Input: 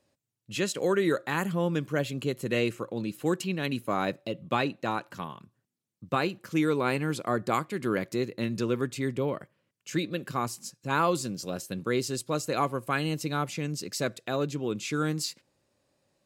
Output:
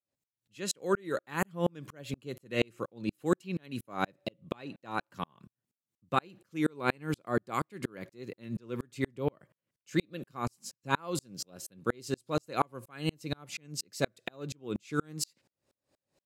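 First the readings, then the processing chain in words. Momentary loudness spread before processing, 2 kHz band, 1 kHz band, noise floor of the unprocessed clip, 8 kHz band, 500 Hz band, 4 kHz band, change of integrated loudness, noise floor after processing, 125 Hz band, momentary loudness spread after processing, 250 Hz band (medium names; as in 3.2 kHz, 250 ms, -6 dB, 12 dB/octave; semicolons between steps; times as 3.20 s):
8 LU, -5.0 dB, -4.5 dB, -80 dBFS, -4.0 dB, -6.0 dB, -5.0 dB, -5.5 dB, under -85 dBFS, -6.0 dB, 10 LU, -5.5 dB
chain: sawtooth tremolo in dB swelling 4.2 Hz, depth 40 dB; trim +4 dB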